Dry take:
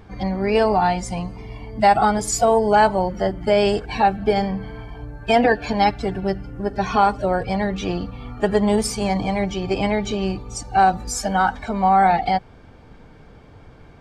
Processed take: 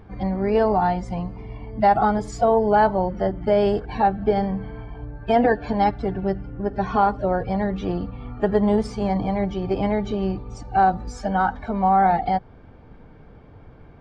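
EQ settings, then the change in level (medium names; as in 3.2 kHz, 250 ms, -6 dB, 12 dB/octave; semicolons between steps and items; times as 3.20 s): dynamic bell 2.5 kHz, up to -7 dB, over -45 dBFS, Q 4.1; tape spacing loss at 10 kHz 26 dB; 0.0 dB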